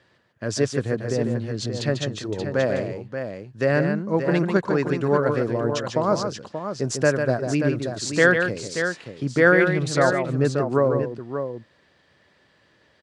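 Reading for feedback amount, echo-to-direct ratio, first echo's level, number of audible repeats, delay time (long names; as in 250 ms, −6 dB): repeats not evenly spaced, −4.0 dB, −6.5 dB, 2, 146 ms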